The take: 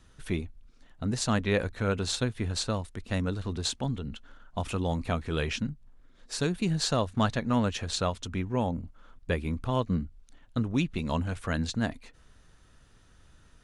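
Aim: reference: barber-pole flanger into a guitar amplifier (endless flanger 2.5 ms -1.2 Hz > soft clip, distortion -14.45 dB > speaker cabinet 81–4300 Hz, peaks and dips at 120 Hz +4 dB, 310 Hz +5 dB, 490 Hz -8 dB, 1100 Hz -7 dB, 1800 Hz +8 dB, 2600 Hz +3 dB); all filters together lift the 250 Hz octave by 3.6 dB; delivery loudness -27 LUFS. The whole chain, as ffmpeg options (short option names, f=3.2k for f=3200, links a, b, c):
-filter_complex "[0:a]equalizer=f=250:t=o:g=3,asplit=2[a][b];[b]adelay=2.5,afreqshift=-1.2[c];[a][c]amix=inputs=2:normalize=1,asoftclip=threshold=-24.5dB,highpass=81,equalizer=f=120:t=q:w=4:g=4,equalizer=f=310:t=q:w=4:g=5,equalizer=f=490:t=q:w=4:g=-8,equalizer=f=1.1k:t=q:w=4:g=-7,equalizer=f=1.8k:t=q:w=4:g=8,equalizer=f=2.6k:t=q:w=4:g=3,lowpass=f=4.3k:w=0.5412,lowpass=f=4.3k:w=1.3066,volume=7.5dB"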